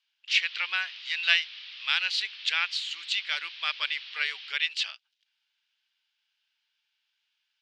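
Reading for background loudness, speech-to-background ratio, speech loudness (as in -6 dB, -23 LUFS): -41.0 LUFS, 13.0 dB, -28.0 LUFS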